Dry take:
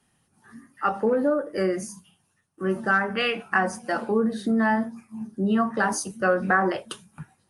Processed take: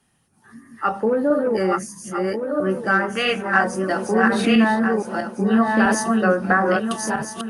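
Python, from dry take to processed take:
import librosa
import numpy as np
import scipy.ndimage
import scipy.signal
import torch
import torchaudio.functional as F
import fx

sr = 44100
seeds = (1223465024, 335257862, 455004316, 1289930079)

y = fx.reverse_delay_fb(x, sr, ms=651, feedback_pct=52, wet_db=-2.0)
y = fx.env_flatten(y, sr, amount_pct=50, at=(4.23, 4.64))
y = y * 10.0 ** (2.5 / 20.0)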